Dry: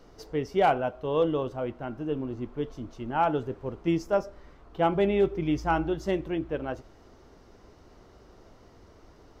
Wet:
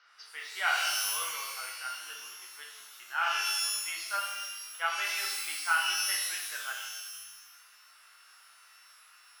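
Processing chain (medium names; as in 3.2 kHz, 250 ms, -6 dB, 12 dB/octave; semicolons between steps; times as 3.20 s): octave divider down 2 oct, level 0 dB; Chebyshev band-pass 1.4–5.5 kHz, order 3; treble shelf 2.1 kHz -12 dB; pitch-shifted reverb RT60 1.1 s, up +12 st, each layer -2 dB, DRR -1 dB; trim +8.5 dB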